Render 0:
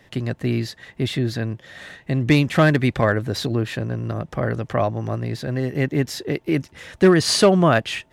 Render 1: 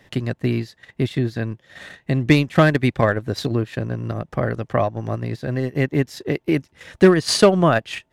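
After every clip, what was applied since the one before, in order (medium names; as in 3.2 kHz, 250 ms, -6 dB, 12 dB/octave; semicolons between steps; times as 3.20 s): transient shaper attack +3 dB, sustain -10 dB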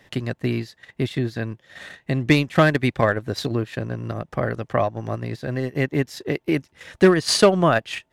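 bass shelf 400 Hz -3.5 dB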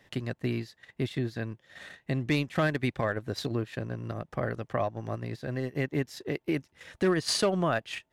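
peak limiter -10.5 dBFS, peak gain reduction 6.5 dB; trim -7 dB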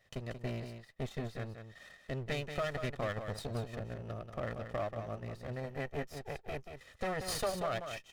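comb filter that takes the minimum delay 1.6 ms; delay 184 ms -8 dB; trim -7.5 dB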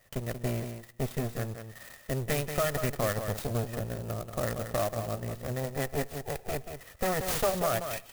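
on a send at -21 dB: reverberation RT60 0.80 s, pre-delay 48 ms; on the sum: sampling jitter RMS 0.065 ms; trim +7 dB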